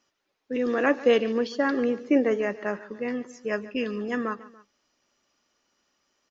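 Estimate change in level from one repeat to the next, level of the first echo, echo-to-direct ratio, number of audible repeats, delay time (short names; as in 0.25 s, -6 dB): -5.0 dB, -18.0 dB, -17.0 dB, 2, 0.143 s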